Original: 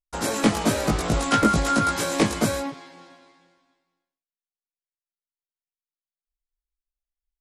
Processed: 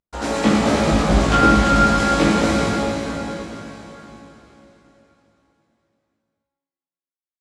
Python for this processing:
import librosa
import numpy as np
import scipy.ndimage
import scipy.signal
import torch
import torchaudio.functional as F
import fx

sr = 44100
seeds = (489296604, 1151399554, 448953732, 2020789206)

y = fx.cvsd(x, sr, bps=64000)
y = fx.air_absorb(y, sr, metres=70.0)
y = fx.rev_plate(y, sr, seeds[0], rt60_s=3.9, hf_ratio=0.95, predelay_ms=0, drr_db=-5.5)